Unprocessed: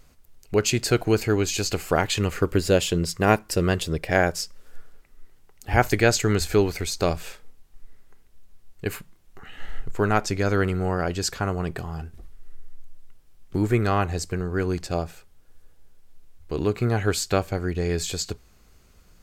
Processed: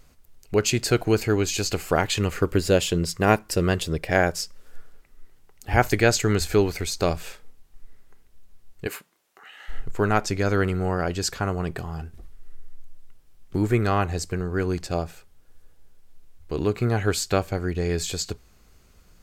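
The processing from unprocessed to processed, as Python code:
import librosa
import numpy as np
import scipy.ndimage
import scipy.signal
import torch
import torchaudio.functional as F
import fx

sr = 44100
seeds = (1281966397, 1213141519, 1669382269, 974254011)

y = fx.highpass(x, sr, hz=fx.line((8.86, 280.0), (9.68, 860.0)), slope=12, at=(8.86, 9.68), fade=0.02)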